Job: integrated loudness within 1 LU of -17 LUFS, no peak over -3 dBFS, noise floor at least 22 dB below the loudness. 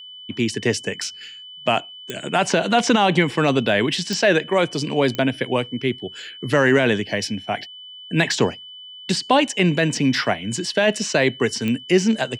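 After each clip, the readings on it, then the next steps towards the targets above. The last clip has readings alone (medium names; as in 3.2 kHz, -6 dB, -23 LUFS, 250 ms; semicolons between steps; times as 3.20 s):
clicks found 4; steady tone 3 kHz; tone level -37 dBFS; loudness -20.5 LUFS; peak level -4.5 dBFS; loudness target -17.0 LUFS
-> de-click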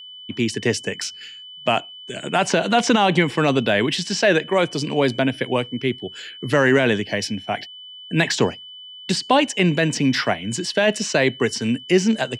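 clicks found 0; steady tone 3 kHz; tone level -37 dBFS
-> band-stop 3 kHz, Q 30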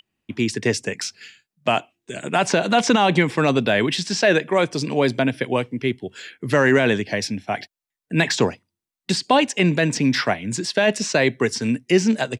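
steady tone not found; loudness -20.5 LUFS; peak level -4.5 dBFS; loudness target -17.0 LUFS
-> trim +3.5 dB; peak limiter -3 dBFS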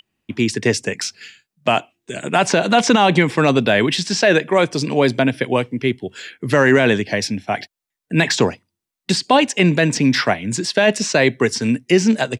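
loudness -17.0 LUFS; peak level -3.0 dBFS; noise floor -84 dBFS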